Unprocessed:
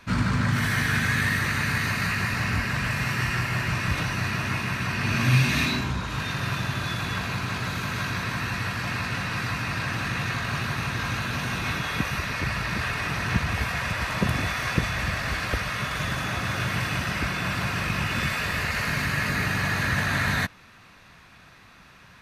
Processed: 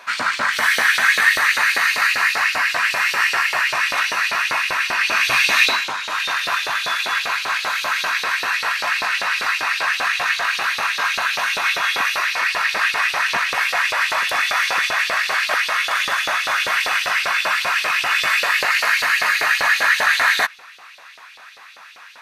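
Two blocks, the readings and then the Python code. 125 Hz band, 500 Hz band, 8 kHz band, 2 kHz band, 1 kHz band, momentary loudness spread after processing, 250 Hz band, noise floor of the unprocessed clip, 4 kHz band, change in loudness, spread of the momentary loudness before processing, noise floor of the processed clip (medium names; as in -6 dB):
under -20 dB, +5.0 dB, +9.0 dB, +10.5 dB, +9.5 dB, 5 LU, -13.5 dB, -51 dBFS, +10.5 dB, +8.5 dB, 5 LU, -42 dBFS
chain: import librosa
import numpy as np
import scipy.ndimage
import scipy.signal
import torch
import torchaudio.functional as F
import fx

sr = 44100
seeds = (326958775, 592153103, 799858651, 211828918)

y = fx.filter_lfo_highpass(x, sr, shape='saw_up', hz=5.1, low_hz=530.0, high_hz=4200.0, q=2.1)
y = y * librosa.db_to_amplitude(8.0)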